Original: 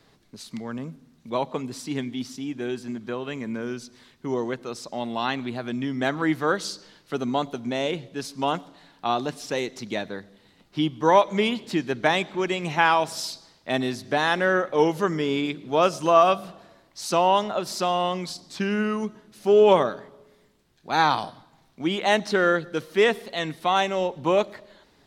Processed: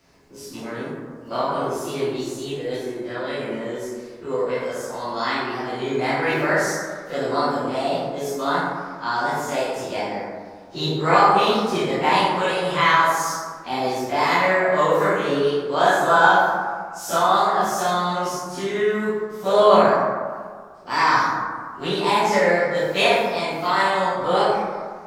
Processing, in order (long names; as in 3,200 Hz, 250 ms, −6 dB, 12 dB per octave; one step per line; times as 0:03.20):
every bin's largest magnitude spread in time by 60 ms
formants moved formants +4 semitones
dense smooth reverb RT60 1.7 s, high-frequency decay 0.35×, DRR −8 dB
level −8 dB